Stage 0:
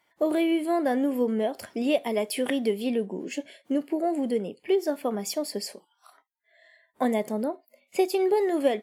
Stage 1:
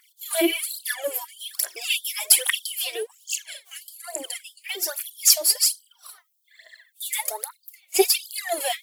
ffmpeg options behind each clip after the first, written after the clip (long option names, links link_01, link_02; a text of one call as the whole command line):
ffmpeg -i in.wav -af "crystalizer=i=9.5:c=0,aphaser=in_gain=1:out_gain=1:delay=3.2:decay=0.79:speed=1.2:type=triangular,afftfilt=real='re*gte(b*sr/1024,300*pow(3100/300,0.5+0.5*sin(2*PI*1.6*pts/sr)))':imag='im*gte(b*sr/1024,300*pow(3100/300,0.5+0.5*sin(2*PI*1.6*pts/sr)))':win_size=1024:overlap=0.75,volume=-5.5dB" out.wav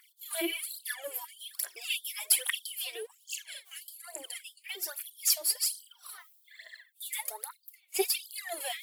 ffmpeg -i in.wav -af "equalizer=frequency=250:width_type=o:width=0.67:gain=-10,equalizer=frequency=630:width_type=o:width=0.67:gain=-5,equalizer=frequency=6300:width_type=o:width=0.67:gain=-5,areverse,acompressor=mode=upward:threshold=-30dB:ratio=2.5,areverse,volume=-8dB" out.wav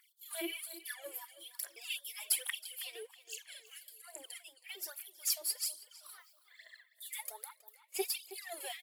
ffmpeg -i in.wav -filter_complex "[0:a]asplit=2[link_01][link_02];[link_02]adelay=321,lowpass=frequency=4000:poles=1,volume=-14.5dB,asplit=2[link_03][link_04];[link_04]adelay=321,lowpass=frequency=4000:poles=1,volume=0.45,asplit=2[link_05][link_06];[link_06]adelay=321,lowpass=frequency=4000:poles=1,volume=0.45,asplit=2[link_07][link_08];[link_08]adelay=321,lowpass=frequency=4000:poles=1,volume=0.45[link_09];[link_01][link_03][link_05][link_07][link_09]amix=inputs=5:normalize=0,volume=-7dB" out.wav